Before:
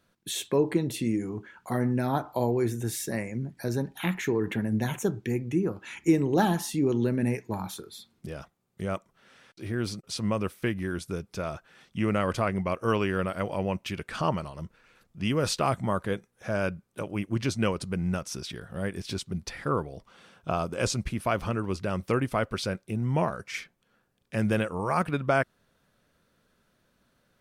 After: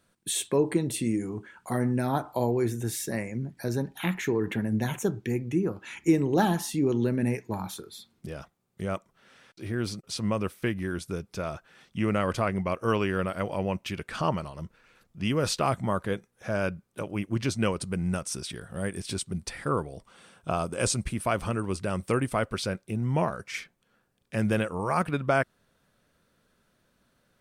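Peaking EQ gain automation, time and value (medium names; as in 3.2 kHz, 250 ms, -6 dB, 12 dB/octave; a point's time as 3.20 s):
peaking EQ 8.7 kHz 0.33 oct
2.30 s +10.5 dB
2.71 s +1 dB
17.32 s +1 dB
18.14 s +12.5 dB
22.26 s +12.5 dB
22.69 s +3 dB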